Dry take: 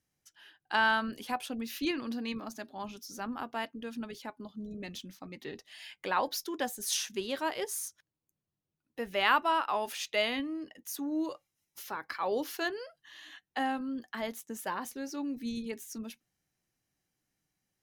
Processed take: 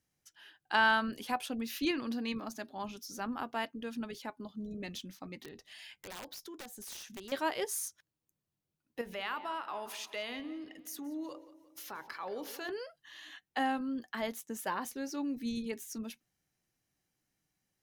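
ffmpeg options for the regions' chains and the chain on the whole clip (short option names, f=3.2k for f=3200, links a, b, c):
-filter_complex "[0:a]asettb=1/sr,asplit=3[a][b][c];[a]atrim=end=5.394[d];[b]atrim=start=5.39:end=7.32,asetpts=PTS-STARTPTS,afade=t=in:d=0.004:c=qsin,afade=t=out:st=1.926:d=0.004:c=qsin,lowshelf=f=190:g=6.5,acompressor=threshold=-47dB:ratio=3:attack=3.2:release=140:knee=1:detection=peak,aeval=exprs='(mod(79.4*val(0)+1,2)-1)/79.4':c=same[e];[c]atrim=start=7.316[f];[d][e]acrossfade=d=0.004:c1=hsin:c2=qsin[g];[g][f]acrossfade=d=0.004:c1=qsin:c2=hsin,asettb=1/sr,asplit=3[h][i][j];[h]atrim=end=9.014[k];[i]atrim=start=9.01:end=12.69,asetpts=PTS-STARTPTS,afade=t=in:d=0.004:c=qsin,afade=t=out:st=3.676:d=0.004:c=qsin,bandreject=f=55.52:t=h:w=4,bandreject=f=111.04:t=h:w=4,bandreject=f=166.56:t=h:w=4,bandreject=f=222.08:t=h:w=4,bandreject=f=277.6:t=h:w=4,bandreject=f=333.12:t=h:w=4,bandreject=f=388.64:t=h:w=4,bandreject=f=444.16:t=h:w=4,bandreject=f=499.68:t=h:w=4,bandreject=f=555.2:t=h:w=4,bandreject=f=610.72:t=h:w=4,bandreject=f=666.24:t=h:w=4,bandreject=f=721.76:t=h:w=4,bandreject=f=777.28:t=h:w=4,bandreject=f=832.8:t=h:w=4,bandreject=f=888.32:t=h:w=4,bandreject=f=943.84:t=h:w=4,bandreject=f=999.36:t=h:w=4,acompressor=threshold=-43dB:ratio=2:attack=3.2:release=140:knee=1:detection=peak,asplit=2[l][m];[m]adelay=177,lowpass=f=4.7k:p=1,volume=-15.5dB,asplit=2[n][o];[o]adelay=177,lowpass=f=4.7k:p=1,volume=0.52,asplit=2[p][q];[q]adelay=177,lowpass=f=4.7k:p=1,volume=0.52,asplit=2[r][s];[s]adelay=177,lowpass=f=4.7k:p=1,volume=0.52,asplit=2[t][u];[u]adelay=177,lowpass=f=4.7k:p=1,volume=0.52[v];[l][n][p][r][t][v]amix=inputs=6:normalize=0,atrim=end_sample=162288[w];[j]atrim=start=12.686[x];[k][w]acrossfade=d=0.004:c1=hsin:c2=qsin[y];[y][x]acrossfade=d=0.004:c1=qsin:c2=hsin"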